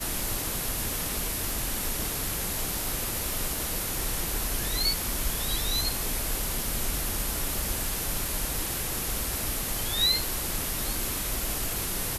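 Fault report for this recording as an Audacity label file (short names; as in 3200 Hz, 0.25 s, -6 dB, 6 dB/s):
7.090000	7.090000	gap 2.2 ms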